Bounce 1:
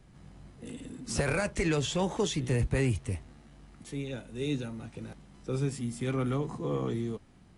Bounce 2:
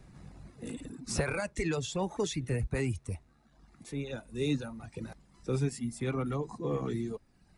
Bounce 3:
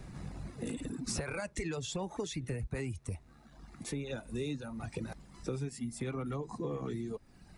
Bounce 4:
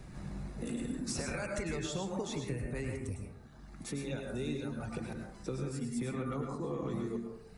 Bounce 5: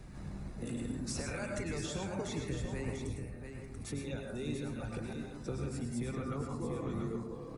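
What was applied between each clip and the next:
speech leveller within 3 dB 0.5 s; reverb reduction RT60 1.2 s; notch filter 3,100 Hz, Q 7.2
downward compressor 6 to 1, threshold −42 dBFS, peak gain reduction 16 dB; level +7 dB
dense smooth reverb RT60 0.77 s, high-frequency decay 0.35×, pre-delay 90 ms, DRR 1 dB; level −1.5 dB
sub-octave generator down 1 octave, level −5 dB; on a send: single-tap delay 687 ms −7.5 dB; on the sum: level −2 dB

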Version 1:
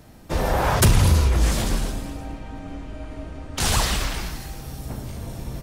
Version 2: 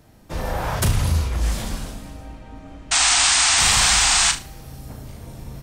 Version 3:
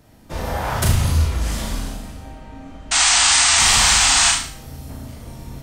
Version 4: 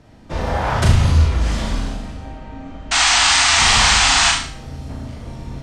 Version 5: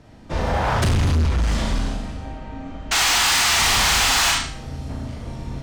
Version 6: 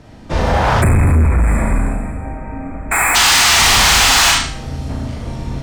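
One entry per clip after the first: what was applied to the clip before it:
dynamic equaliser 370 Hz, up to −4 dB, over −40 dBFS, Q 1.7; sound drawn into the spectrogram noise, 0:02.91–0:04.32, 670–9,100 Hz −13 dBFS; on a send: flutter between parallel walls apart 6.3 metres, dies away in 0.27 s; on the sum: level −4.5 dB
four-comb reverb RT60 0.44 s, combs from 26 ms, DRR 1.5 dB
high-frequency loss of the air 87 metres; level +4 dB
gain into a clipping stage and back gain 15.5 dB
gain on a spectral selection 0:00.82–0:03.15, 2,600–7,100 Hz −28 dB; level +7 dB

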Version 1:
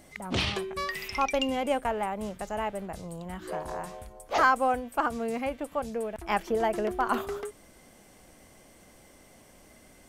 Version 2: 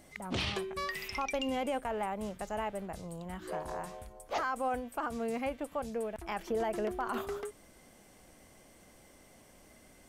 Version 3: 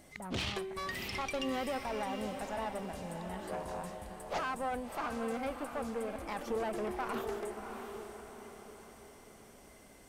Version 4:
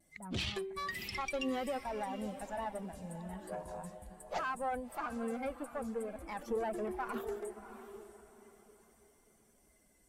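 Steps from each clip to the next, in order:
brickwall limiter −21.5 dBFS, peak gain reduction 10.5 dB; level −3.5 dB
one-sided soft clipper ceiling −35 dBFS; feedback delay with all-pass diffusion 669 ms, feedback 45%, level −7 dB
spectral dynamics exaggerated over time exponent 1.5; notch filter 6,500 Hz, Q 19; pitch vibrato 0.46 Hz 17 cents; level +1.5 dB

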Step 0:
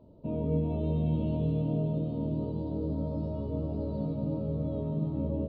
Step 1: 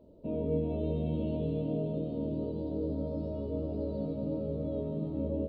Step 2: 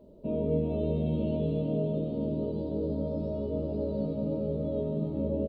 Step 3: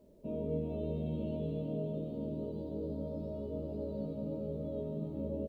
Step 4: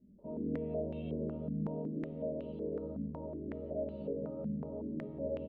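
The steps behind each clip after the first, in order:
octave-band graphic EQ 125/500/1,000 Hz −9/+4/−7 dB
comb filter 5 ms, depth 31%; level +3 dB
bit-depth reduction 12 bits, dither none; level −7.5 dB
loudspeakers that aren't time-aligned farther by 25 metres −3 dB, 75 metres −9 dB; low-pass on a step sequencer 5.4 Hz 220–2,800 Hz; level −6 dB

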